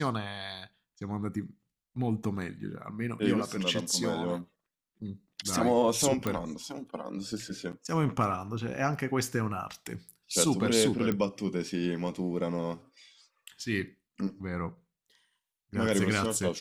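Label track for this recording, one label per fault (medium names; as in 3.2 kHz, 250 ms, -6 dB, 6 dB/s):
6.270000	6.270000	pop -16 dBFS
11.120000	11.120000	pop -17 dBFS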